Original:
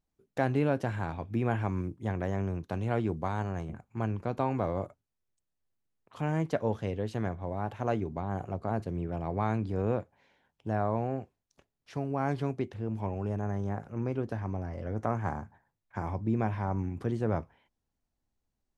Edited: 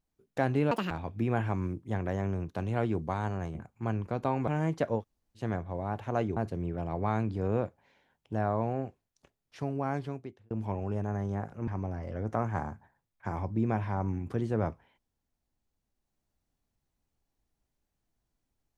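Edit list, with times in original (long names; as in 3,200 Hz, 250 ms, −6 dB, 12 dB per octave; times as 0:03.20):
0:00.71–0:01.05: play speed 174%
0:04.62–0:06.20: remove
0:06.72–0:07.12: fill with room tone, crossfade 0.10 s
0:08.09–0:08.71: remove
0:12.09–0:12.85: fade out
0:14.02–0:14.38: remove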